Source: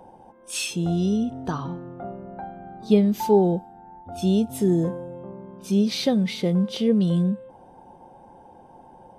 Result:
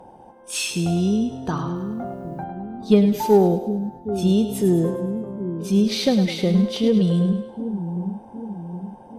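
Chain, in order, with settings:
echo with a time of its own for lows and highs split 400 Hz, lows 765 ms, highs 104 ms, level −9 dB
harmonic generator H 6 −34 dB, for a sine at −5 dBFS
0:01.75–0:02.44: bit-depth reduction 12 bits, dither triangular
level +2.5 dB

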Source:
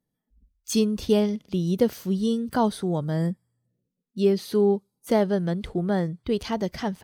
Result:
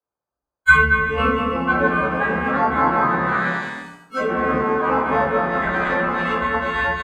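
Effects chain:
every partial snapped to a pitch grid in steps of 4 semitones
bouncing-ball delay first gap 220 ms, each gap 0.7×, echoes 5
noise in a band 62–790 Hz −52 dBFS
noise gate with hold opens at −38 dBFS
parametric band 200 Hz −12 dB 3 octaves
delay with pitch and tempo change per echo 597 ms, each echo +3 semitones, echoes 3
bad sample-rate conversion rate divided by 8×, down none, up hold
treble cut that deepens with the level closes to 1,300 Hz, closed at −23 dBFS
parametric band 1,500 Hz +15 dB 0.73 octaves
convolution reverb RT60 0.55 s, pre-delay 4 ms, DRR −6.5 dB
multiband upward and downward expander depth 40%
level −4.5 dB

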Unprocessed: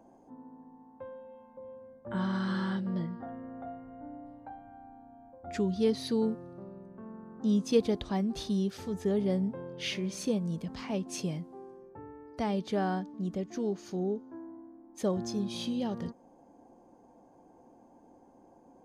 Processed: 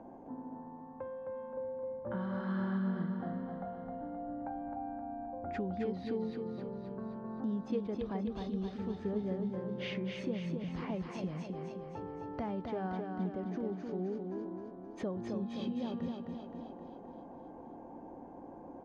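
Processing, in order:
low-pass filter 2,000 Hz 12 dB per octave
downward compressor 2.5 to 1, threshold −50 dBFS, peak gain reduction 19.5 dB
on a send: repeating echo 262 ms, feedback 56%, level −4.5 dB
on the sum: level +7.5 dB

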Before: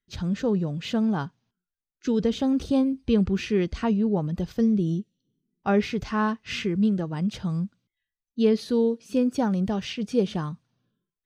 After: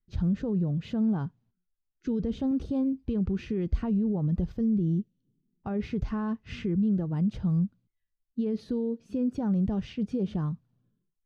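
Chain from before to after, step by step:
0:02.51–0:03.43: low-shelf EQ 140 Hz −8.5 dB
brickwall limiter −21 dBFS, peak gain reduction 11 dB
spectral tilt −3.5 dB per octave
level −7 dB

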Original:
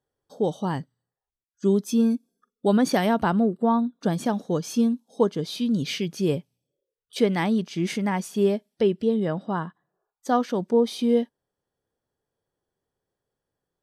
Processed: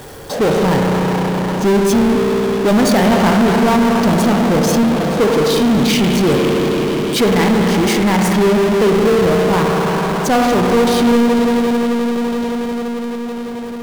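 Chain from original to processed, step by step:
spring reverb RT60 3.8 s, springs 33/55 ms, chirp 45 ms, DRR 1 dB
power curve on the samples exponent 0.35

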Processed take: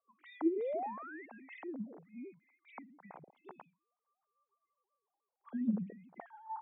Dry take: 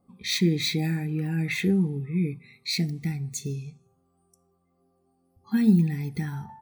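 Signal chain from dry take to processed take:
three sine waves on the formant tracks
sound drawn into the spectrogram rise, 0:00.43–0:01.26, 290–2,200 Hz −31 dBFS
envelope filter 450–1,100 Hz, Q 2.9, down, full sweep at −19.5 dBFS
level −4.5 dB

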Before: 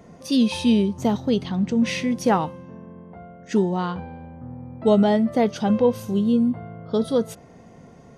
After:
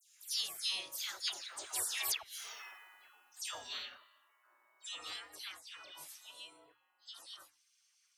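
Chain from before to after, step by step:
source passing by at 0:02.50, 24 m/s, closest 4 metres
gate on every frequency bin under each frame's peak −30 dB weak
spectral tilt +4.5 dB per octave
mains-hum notches 60/120/180/240/300 Hz
gate with flip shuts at −32 dBFS, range −30 dB
all-pass dispersion lows, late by 126 ms, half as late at 2,200 Hz
level +14.5 dB

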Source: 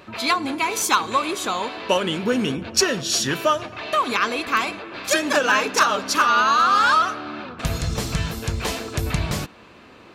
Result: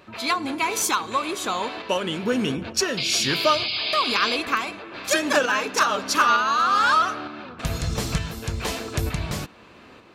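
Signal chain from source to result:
shaped tremolo saw up 1.1 Hz, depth 45%
sound drawn into the spectrogram noise, 0:02.97–0:04.37, 2,100–5,100 Hz −27 dBFS

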